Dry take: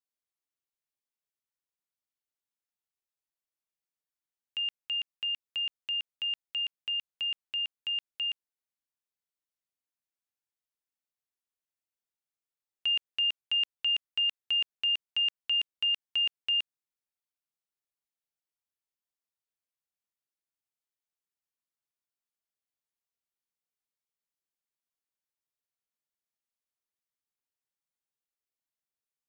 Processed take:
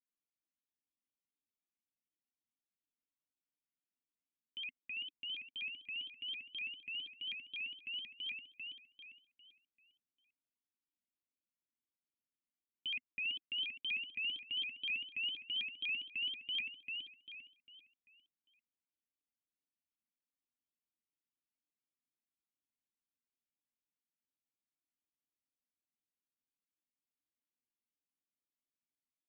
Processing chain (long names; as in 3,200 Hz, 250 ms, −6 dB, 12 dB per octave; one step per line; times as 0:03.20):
formant resonators in series i
repeating echo 397 ms, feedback 37%, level −3 dB
pitch modulation by a square or saw wave saw up 4.1 Hz, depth 250 cents
level +5 dB